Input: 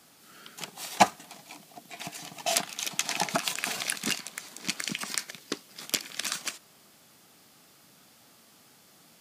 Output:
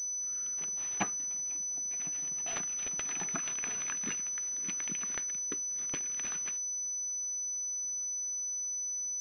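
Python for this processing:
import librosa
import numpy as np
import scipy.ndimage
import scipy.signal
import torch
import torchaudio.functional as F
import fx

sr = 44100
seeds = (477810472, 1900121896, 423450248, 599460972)

y = (np.mod(10.0 ** (3.0 / 20.0) * x + 1.0, 2.0) - 1.0) / 10.0 ** (3.0 / 20.0)
y = fx.band_shelf(y, sr, hz=740.0, db=-9.0, octaves=1.0)
y = fx.pwm(y, sr, carrier_hz=6000.0)
y = y * 10.0 ** (-8.0 / 20.0)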